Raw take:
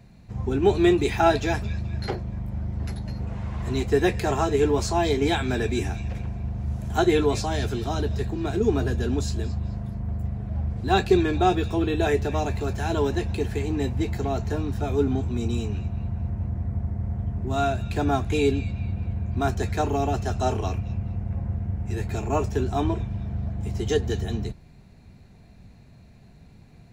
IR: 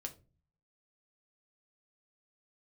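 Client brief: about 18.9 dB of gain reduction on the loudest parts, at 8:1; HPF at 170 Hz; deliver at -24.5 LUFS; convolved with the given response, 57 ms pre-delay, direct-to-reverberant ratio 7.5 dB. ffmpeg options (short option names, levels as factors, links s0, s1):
-filter_complex "[0:a]highpass=170,acompressor=threshold=0.02:ratio=8,asplit=2[s0][s1];[1:a]atrim=start_sample=2205,adelay=57[s2];[s1][s2]afir=irnorm=-1:irlink=0,volume=0.596[s3];[s0][s3]amix=inputs=2:normalize=0,volume=4.73"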